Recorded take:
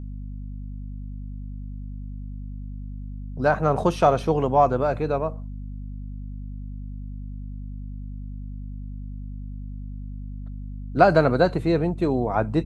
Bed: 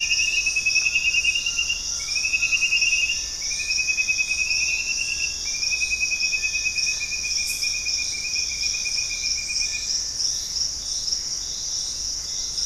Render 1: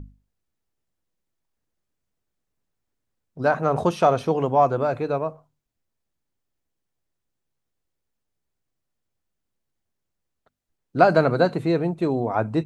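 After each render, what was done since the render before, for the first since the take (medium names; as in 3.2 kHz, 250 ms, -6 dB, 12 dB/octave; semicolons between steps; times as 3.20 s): hum notches 50/100/150/200/250 Hz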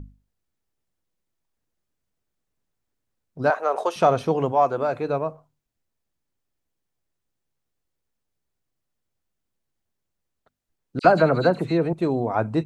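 3.50–3.96 s: high-pass 440 Hz 24 dB/octave; 4.51–5.03 s: high-pass 490 Hz -> 180 Hz 6 dB/octave; 10.99–11.93 s: phase dispersion lows, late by 55 ms, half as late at 2.4 kHz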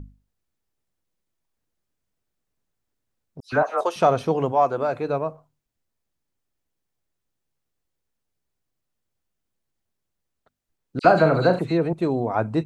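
3.40–3.81 s: phase dispersion lows, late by 125 ms, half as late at 2.1 kHz; 11.02–11.59 s: flutter echo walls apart 6.7 m, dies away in 0.3 s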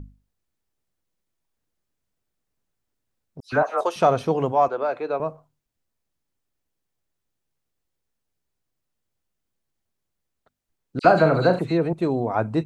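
4.68–5.20 s: three-band isolator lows -18 dB, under 290 Hz, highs -13 dB, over 4.9 kHz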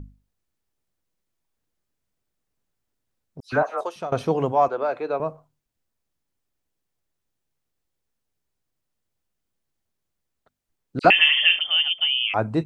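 3.54–4.12 s: fade out, to -19 dB; 11.10–12.34 s: frequency inversion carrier 3.3 kHz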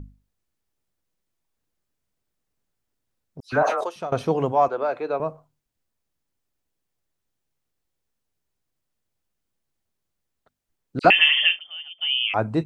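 3.42–3.87 s: decay stretcher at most 50 dB/s; 11.45–12.11 s: dip -16 dB, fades 0.13 s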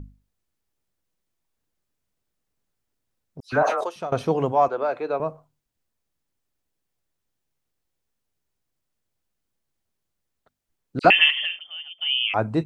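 11.30–12.06 s: compression 4:1, threshold -24 dBFS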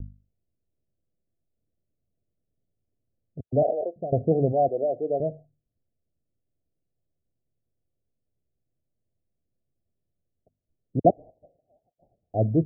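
steep low-pass 710 Hz 96 dB/octave; peaking EQ 100 Hz +6.5 dB 1.3 oct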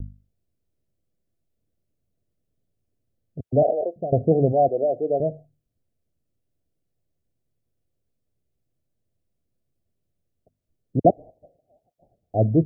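trim +3.5 dB; peak limiter -3 dBFS, peak gain reduction 2 dB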